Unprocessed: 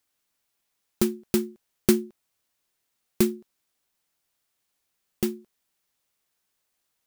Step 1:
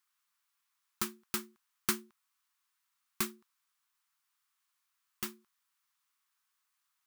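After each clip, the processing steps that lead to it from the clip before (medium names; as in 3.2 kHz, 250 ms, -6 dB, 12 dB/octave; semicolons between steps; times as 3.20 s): resonant low shelf 780 Hz -12.5 dB, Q 3; trim -4.5 dB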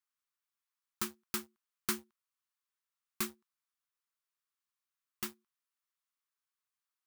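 waveshaping leveller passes 2; trim -8 dB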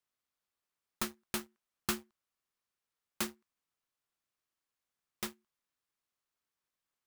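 delay time shaken by noise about 1.4 kHz, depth 0.069 ms; trim +1.5 dB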